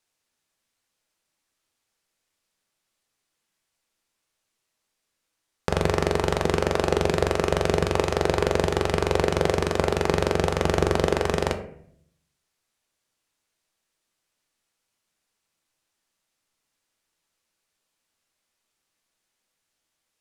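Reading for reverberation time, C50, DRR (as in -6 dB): 0.65 s, 11.0 dB, 6.0 dB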